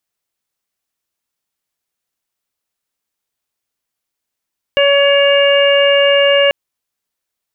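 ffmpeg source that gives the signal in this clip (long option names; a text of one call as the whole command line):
ffmpeg -f lavfi -i "aevalsrc='0.335*sin(2*PI*563*t)+0.0668*sin(2*PI*1126*t)+0.119*sin(2*PI*1689*t)+0.1*sin(2*PI*2252*t)+0.188*sin(2*PI*2815*t)':duration=1.74:sample_rate=44100" out.wav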